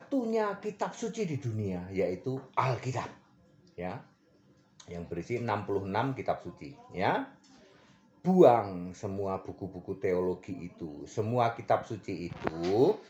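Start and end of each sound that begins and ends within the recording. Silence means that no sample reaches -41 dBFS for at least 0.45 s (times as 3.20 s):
3.78–4.00 s
4.80–7.27 s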